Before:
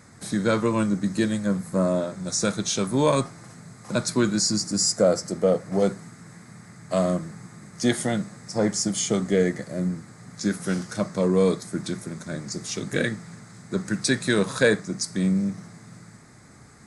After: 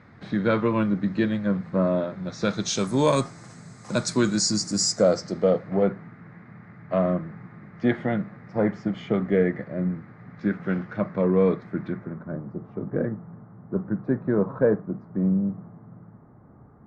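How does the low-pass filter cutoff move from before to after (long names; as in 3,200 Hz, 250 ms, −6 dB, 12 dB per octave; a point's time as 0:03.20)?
low-pass filter 24 dB per octave
0:02.31 3,300 Hz
0:02.82 8,200 Hz
0:04.79 8,200 Hz
0:05.49 4,100 Hz
0:05.86 2,400 Hz
0:11.78 2,400 Hz
0:12.42 1,100 Hz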